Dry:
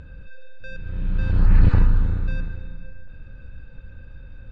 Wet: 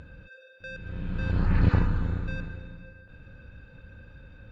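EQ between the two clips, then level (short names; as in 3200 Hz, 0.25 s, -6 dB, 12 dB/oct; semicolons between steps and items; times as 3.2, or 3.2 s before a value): HPF 120 Hz 6 dB/oct; 0.0 dB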